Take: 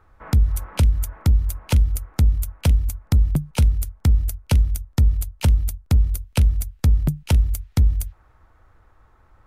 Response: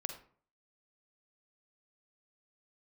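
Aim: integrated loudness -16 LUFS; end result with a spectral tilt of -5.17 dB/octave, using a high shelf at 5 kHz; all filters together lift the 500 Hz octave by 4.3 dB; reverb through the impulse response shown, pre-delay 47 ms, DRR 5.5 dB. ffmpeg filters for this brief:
-filter_complex "[0:a]equalizer=f=500:t=o:g=5,highshelf=f=5000:g=3,asplit=2[s0][s1];[1:a]atrim=start_sample=2205,adelay=47[s2];[s1][s2]afir=irnorm=-1:irlink=0,volume=0.562[s3];[s0][s3]amix=inputs=2:normalize=0,volume=1.78"

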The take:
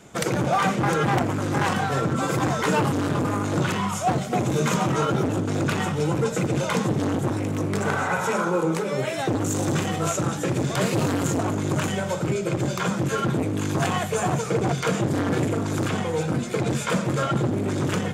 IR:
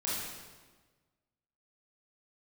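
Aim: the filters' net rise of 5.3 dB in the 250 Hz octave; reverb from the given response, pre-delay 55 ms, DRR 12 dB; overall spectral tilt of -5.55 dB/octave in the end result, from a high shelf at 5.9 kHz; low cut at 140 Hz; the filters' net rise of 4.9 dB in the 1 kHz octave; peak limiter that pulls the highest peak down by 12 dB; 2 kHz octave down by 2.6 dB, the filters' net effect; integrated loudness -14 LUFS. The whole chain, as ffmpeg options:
-filter_complex "[0:a]highpass=140,equalizer=f=250:t=o:g=7.5,equalizer=f=1000:t=o:g=8,equalizer=f=2000:t=o:g=-8.5,highshelf=f=5900:g=6.5,alimiter=limit=0.126:level=0:latency=1,asplit=2[s0][s1];[1:a]atrim=start_sample=2205,adelay=55[s2];[s1][s2]afir=irnorm=-1:irlink=0,volume=0.133[s3];[s0][s3]amix=inputs=2:normalize=0,volume=3.98"

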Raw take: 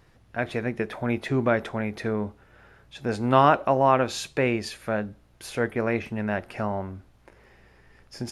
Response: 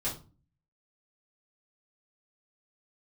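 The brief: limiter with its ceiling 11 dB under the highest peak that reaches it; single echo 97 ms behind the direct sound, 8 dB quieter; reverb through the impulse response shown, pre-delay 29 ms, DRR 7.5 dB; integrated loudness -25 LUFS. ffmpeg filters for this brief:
-filter_complex "[0:a]alimiter=limit=0.178:level=0:latency=1,aecho=1:1:97:0.398,asplit=2[s0][s1];[1:a]atrim=start_sample=2205,adelay=29[s2];[s1][s2]afir=irnorm=-1:irlink=0,volume=0.251[s3];[s0][s3]amix=inputs=2:normalize=0,volume=1.33"

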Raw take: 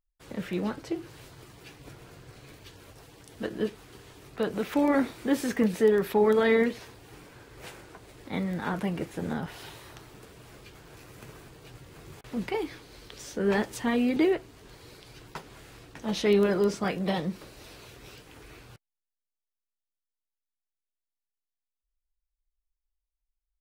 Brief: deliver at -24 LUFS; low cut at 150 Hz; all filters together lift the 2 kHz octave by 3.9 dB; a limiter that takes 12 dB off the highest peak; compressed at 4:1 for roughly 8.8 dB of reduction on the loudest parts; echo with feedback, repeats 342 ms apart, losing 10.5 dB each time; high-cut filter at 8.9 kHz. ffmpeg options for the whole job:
-af "highpass=150,lowpass=8900,equalizer=f=2000:t=o:g=4.5,acompressor=threshold=0.0398:ratio=4,alimiter=level_in=2:limit=0.0631:level=0:latency=1,volume=0.501,aecho=1:1:342|684|1026:0.299|0.0896|0.0269,volume=7.5"

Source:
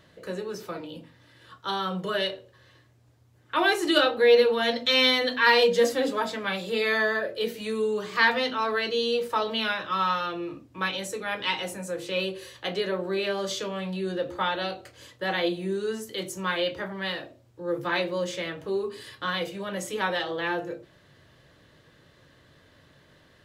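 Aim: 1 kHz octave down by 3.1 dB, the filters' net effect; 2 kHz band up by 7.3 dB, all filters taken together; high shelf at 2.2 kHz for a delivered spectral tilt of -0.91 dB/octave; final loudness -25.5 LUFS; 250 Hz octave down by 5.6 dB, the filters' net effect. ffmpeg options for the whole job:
-af "equalizer=f=250:t=o:g=-8,equalizer=f=1000:t=o:g=-8.5,equalizer=f=2000:t=o:g=7.5,highshelf=f=2200:g=8,volume=0.631"

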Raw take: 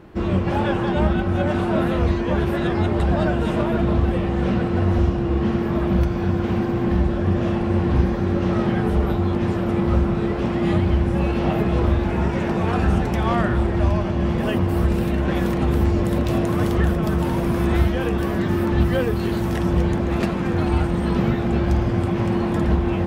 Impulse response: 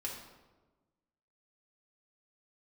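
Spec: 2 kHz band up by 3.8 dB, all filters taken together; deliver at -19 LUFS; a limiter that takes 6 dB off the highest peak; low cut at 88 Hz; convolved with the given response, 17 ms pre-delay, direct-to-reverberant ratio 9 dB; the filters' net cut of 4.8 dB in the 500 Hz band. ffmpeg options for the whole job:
-filter_complex "[0:a]highpass=88,equalizer=f=500:t=o:g=-8,equalizer=f=2000:t=o:g=5.5,alimiter=limit=0.178:level=0:latency=1,asplit=2[s0][s1];[1:a]atrim=start_sample=2205,adelay=17[s2];[s1][s2]afir=irnorm=-1:irlink=0,volume=0.335[s3];[s0][s3]amix=inputs=2:normalize=0,volume=1.58"

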